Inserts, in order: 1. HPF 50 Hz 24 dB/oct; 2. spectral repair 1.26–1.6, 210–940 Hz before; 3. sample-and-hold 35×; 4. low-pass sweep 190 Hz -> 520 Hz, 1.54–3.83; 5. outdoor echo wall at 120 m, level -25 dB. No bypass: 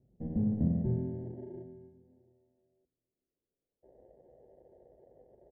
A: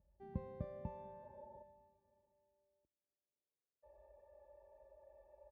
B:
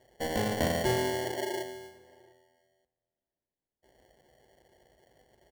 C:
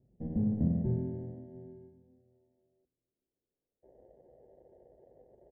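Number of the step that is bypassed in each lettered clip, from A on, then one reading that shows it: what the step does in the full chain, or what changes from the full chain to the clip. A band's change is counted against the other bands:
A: 3, crest factor change +8.5 dB; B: 4, 1 kHz band +26.5 dB; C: 2, momentary loudness spread change +3 LU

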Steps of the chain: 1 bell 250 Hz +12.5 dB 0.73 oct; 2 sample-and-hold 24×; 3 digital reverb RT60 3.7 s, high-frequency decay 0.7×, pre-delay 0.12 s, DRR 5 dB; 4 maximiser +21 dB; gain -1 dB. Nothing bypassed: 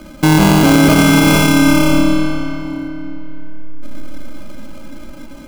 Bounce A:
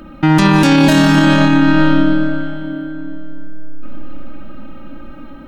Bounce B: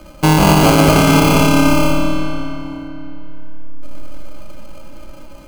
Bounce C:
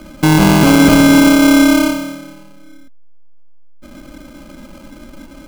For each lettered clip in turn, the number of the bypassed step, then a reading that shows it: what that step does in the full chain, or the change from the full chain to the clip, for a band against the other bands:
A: 2, distortion -2 dB; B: 1, 1 kHz band +4.0 dB; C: 3, momentary loudness spread change -6 LU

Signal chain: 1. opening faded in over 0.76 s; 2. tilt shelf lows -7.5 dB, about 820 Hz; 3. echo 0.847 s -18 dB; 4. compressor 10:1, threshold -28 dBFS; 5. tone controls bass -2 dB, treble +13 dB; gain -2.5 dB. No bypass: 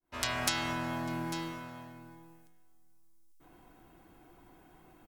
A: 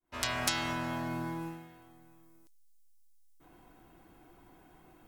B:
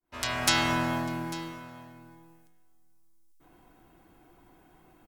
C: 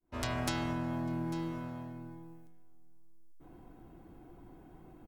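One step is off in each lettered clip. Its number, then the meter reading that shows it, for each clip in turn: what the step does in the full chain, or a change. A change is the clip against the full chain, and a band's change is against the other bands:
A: 3, momentary loudness spread change -8 LU; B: 4, crest factor change -2.5 dB; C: 2, 125 Hz band +9.0 dB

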